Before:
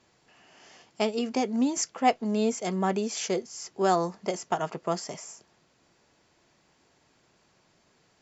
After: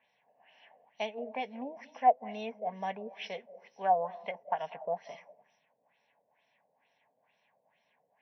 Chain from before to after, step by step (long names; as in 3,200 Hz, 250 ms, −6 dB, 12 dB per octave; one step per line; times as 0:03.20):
hearing-aid frequency compression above 3,600 Hz 1.5 to 1
high-pass filter 290 Hz 12 dB per octave
phaser with its sweep stopped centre 1,300 Hz, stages 6
on a send at −16.5 dB: convolution reverb RT60 0.50 s, pre-delay 150 ms
on the sum: auto-filter low-pass sine 2.2 Hz 510–5,400 Hz
level −5.5 dB